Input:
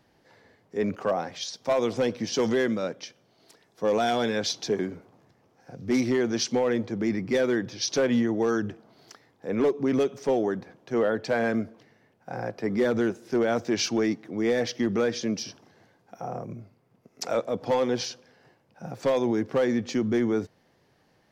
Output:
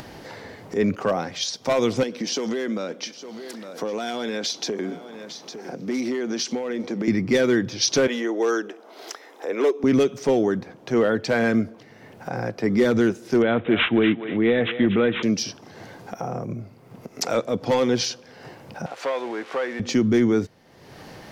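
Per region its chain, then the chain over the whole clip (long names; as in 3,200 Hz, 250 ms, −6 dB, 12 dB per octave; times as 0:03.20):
0:02.03–0:07.08: high-pass filter 190 Hz 24 dB per octave + downward compressor 5 to 1, threshold −30 dBFS + single-tap delay 857 ms −19.5 dB
0:08.07–0:09.84: high-pass filter 350 Hz 24 dB per octave + notch filter 4,500 Hz, Q 8.5
0:13.42–0:15.23: bad sample-rate conversion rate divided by 6×, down none, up filtered + feedback echo with a high-pass in the loop 240 ms, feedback 22%, high-pass 730 Hz, level −9 dB
0:18.86–0:19.80: spike at every zero crossing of −25.5 dBFS + band-pass filter 680–2,200 Hz
whole clip: upward compression, threshold −35 dBFS; dynamic equaliser 720 Hz, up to −6 dB, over −37 dBFS, Q 0.94; notch filter 1,700 Hz, Q 29; level +7.5 dB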